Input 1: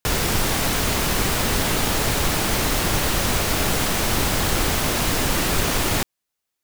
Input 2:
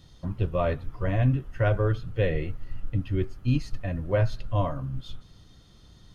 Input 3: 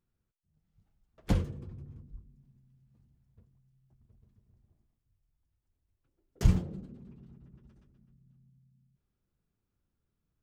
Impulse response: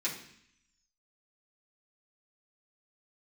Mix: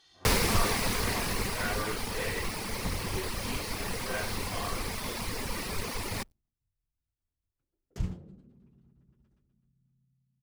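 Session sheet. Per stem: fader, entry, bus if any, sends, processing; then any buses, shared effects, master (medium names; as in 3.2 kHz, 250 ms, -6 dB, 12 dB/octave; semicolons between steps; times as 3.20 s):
-0.5 dB, 0.20 s, no send, reverb removal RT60 0.96 s; rippled EQ curve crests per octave 0.89, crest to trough 6 dB; word length cut 10-bit, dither none; auto duck -11 dB, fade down 1.95 s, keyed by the second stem
-0.5 dB, 0.00 s, no send, phase randomisation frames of 200 ms; band-pass filter 3.2 kHz, Q 0.5; comb 2.6 ms, depth 73%
-9.0 dB, 1.55 s, no send, none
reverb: none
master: loudspeaker Doppler distortion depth 0.36 ms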